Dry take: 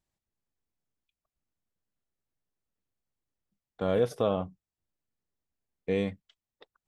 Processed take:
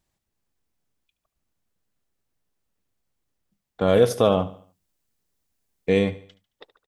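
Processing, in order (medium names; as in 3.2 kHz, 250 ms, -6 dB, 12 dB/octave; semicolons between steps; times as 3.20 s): 3.87–5.99 s: treble shelf 3.8 kHz +7.5 dB; on a send: feedback delay 73 ms, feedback 42%, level -16.5 dB; on the sum: trim +8.5 dB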